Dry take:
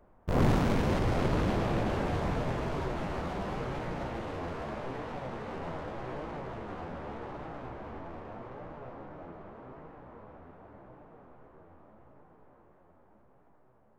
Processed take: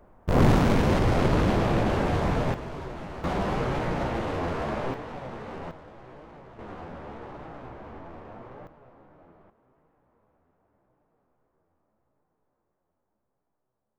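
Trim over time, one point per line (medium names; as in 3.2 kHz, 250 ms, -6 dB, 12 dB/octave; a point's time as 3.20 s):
+6 dB
from 2.54 s -3 dB
from 3.24 s +8 dB
from 4.94 s +1 dB
from 5.71 s -8 dB
from 6.59 s 0 dB
from 8.67 s -9 dB
from 9.50 s -18 dB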